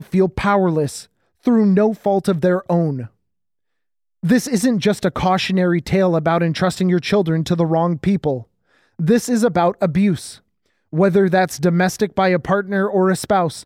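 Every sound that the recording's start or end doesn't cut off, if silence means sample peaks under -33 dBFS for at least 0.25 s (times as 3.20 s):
1.45–3.06 s
4.23–8.43 s
8.99–10.35 s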